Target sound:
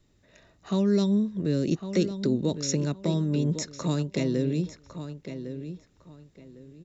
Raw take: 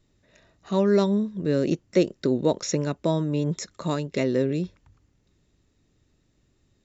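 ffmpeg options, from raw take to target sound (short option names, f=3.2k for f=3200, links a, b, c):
-filter_complex "[0:a]acrossover=split=310|3000[a][b][c];[b]acompressor=threshold=-36dB:ratio=4[d];[a][d][c]amix=inputs=3:normalize=0,asplit=2[e][f];[f]adelay=1105,lowpass=f=3.6k:p=1,volume=-10dB,asplit=2[g][h];[h]adelay=1105,lowpass=f=3.6k:p=1,volume=0.25,asplit=2[i][j];[j]adelay=1105,lowpass=f=3.6k:p=1,volume=0.25[k];[e][g][i][k]amix=inputs=4:normalize=0,volume=1dB"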